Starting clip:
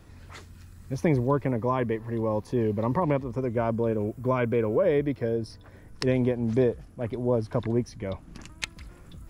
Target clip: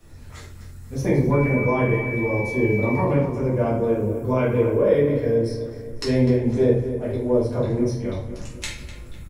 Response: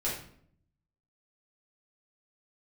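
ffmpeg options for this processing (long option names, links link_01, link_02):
-filter_complex "[0:a]bandreject=frequency=4800:width=23,acrossover=split=120|4700[link_01][link_02][link_03];[link_03]acontrast=73[link_04];[link_01][link_02][link_04]amix=inputs=3:normalize=0,asettb=1/sr,asplit=3[link_05][link_06][link_07];[link_05]atrim=end=1.324[link_08];[link_06]atrim=start=1.32:end=2.94,asetpts=PTS-STARTPTS,afade=type=in:duration=0.004:curve=qsin,afade=type=out:start_time=1.616:duration=0.004:curve=qsin,aeval=exprs='val(0)+0.0282*sin(2*PI*2300*n/s)':channel_layout=same[link_09];[link_07]atrim=start=2.936[link_10];[link_08][link_09]acrossfade=duration=0.004:curve1=hsin:curve2=qsin[link_11];[link_11][link_10]acrossfade=duration=0.004:curve1=qsin:curve2=hsin,asplit=2[link_12][link_13];[link_13]adelay=251,lowpass=frequency=3100:poles=1,volume=-11dB,asplit=2[link_14][link_15];[link_15]adelay=251,lowpass=frequency=3100:poles=1,volume=0.49,asplit=2[link_16][link_17];[link_17]adelay=251,lowpass=frequency=3100:poles=1,volume=0.49,asplit=2[link_18][link_19];[link_19]adelay=251,lowpass=frequency=3100:poles=1,volume=0.49,asplit=2[link_20][link_21];[link_21]adelay=251,lowpass=frequency=3100:poles=1,volume=0.49[link_22];[link_12][link_14][link_16][link_18][link_20][link_22]amix=inputs=6:normalize=0[link_23];[1:a]atrim=start_sample=2205,asetrate=42777,aresample=44100[link_24];[link_23][link_24]afir=irnorm=-1:irlink=0,volume=-4dB"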